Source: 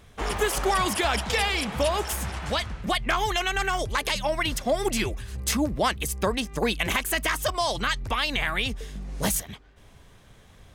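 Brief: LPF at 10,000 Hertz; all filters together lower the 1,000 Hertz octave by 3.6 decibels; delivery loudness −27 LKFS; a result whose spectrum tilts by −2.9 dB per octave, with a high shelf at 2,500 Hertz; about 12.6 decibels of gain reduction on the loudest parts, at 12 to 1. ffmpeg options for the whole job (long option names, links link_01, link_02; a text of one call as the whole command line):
ffmpeg -i in.wav -af "lowpass=10000,equalizer=frequency=1000:width_type=o:gain=-5.5,highshelf=frequency=2500:gain=4.5,acompressor=threshold=-33dB:ratio=12,volume=9.5dB" out.wav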